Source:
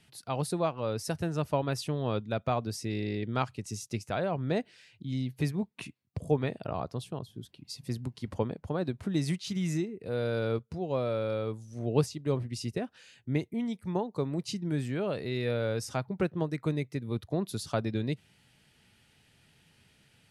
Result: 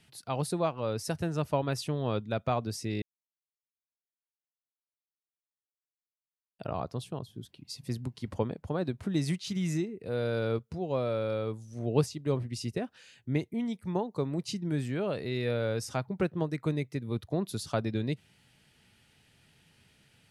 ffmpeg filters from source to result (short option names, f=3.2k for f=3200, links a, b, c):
-filter_complex "[0:a]asplit=3[a][b][c];[a]atrim=end=3.02,asetpts=PTS-STARTPTS,afade=t=out:st=3.016:d=0.004:c=hsin[d];[b]atrim=start=3.02:end=6.59,asetpts=PTS-STARTPTS,volume=0[e];[c]atrim=start=6.59,asetpts=PTS-STARTPTS,afade=t=in:d=0.004:c=hsin[f];[d][e][f]concat=n=3:v=0:a=1"